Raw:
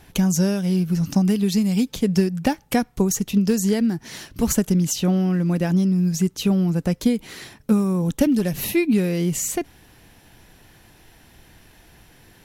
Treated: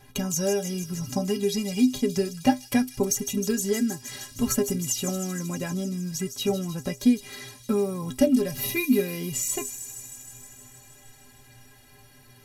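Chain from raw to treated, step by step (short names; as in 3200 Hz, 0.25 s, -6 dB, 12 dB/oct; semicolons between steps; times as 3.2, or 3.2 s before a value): metallic resonator 120 Hz, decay 0.25 s, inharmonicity 0.03; thin delay 0.156 s, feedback 76%, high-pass 5200 Hz, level -6.5 dB; gain +7 dB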